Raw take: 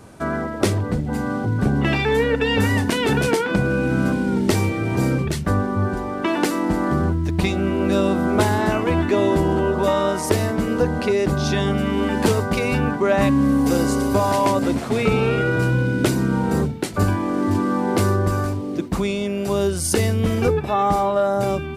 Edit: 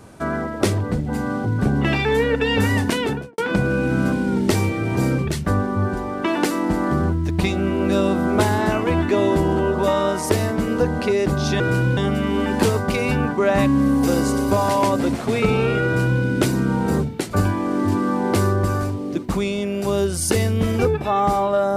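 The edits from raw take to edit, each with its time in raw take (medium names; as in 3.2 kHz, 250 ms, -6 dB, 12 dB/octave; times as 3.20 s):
2.92–3.38 s: studio fade out
15.48–15.85 s: copy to 11.60 s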